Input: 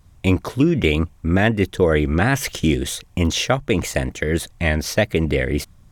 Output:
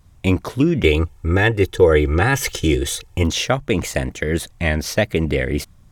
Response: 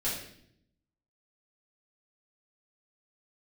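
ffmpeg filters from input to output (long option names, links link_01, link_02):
-filter_complex "[0:a]asettb=1/sr,asplit=3[link_01][link_02][link_03];[link_01]atrim=end=0.844[link_04];[link_02]atrim=start=0.84:end=3.23,asetpts=PTS-STARTPTS,afade=type=in:duration=0.004:curve=qsin,afade=type=out:start_time=2.386:duration=0.004:curve=qsin,aecho=1:1:2.3:0.8,atrim=end_sample=105399[link_05];[link_03]atrim=start=3.226[link_06];[link_04][link_05]acrossfade=duration=0.004:curve1=hsin:curve2=qsin[link_07];[link_07][link_06]acrossfade=duration=0.004:curve1=qsin:curve2=hsin"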